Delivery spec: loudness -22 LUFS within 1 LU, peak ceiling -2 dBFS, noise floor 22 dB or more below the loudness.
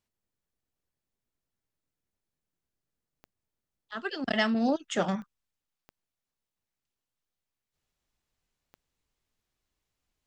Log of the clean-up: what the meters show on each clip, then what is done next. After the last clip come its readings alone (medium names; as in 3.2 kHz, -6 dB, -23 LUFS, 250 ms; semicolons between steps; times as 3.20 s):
clicks found 4; loudness -29.5 LUFS; peak level -12.5 dBFS; loudness target -22.0 LUFS
-> de-click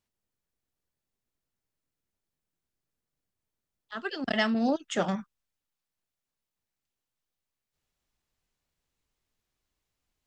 clicks found 0; loudness -29.5 LUFS; peak level -12.5 dBFS; loudness target -22.0 LUFS
-> trim +7.5 dB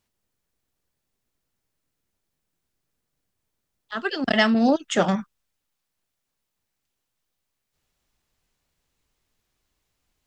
loudness -22.0 LUFS; peak level -5.0 dBFS; noise floor -81 dBFS